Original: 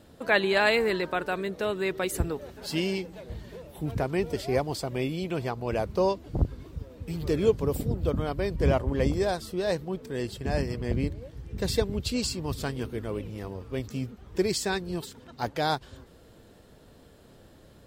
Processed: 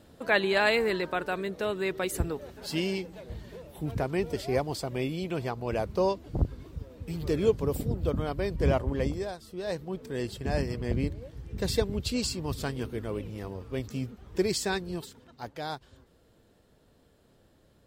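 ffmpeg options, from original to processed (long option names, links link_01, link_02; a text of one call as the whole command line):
ffmpeg -i in.wav -af "volume=9.5dB,afade=type=out:start_time=8.87:duration=0.51:silence=0.298538,afade=type=in:start_time=9.38:duration=0.71:silence=0.281838,afade=type=out:start_time=14.76:duration=0.65:silence=0.398107" out.wav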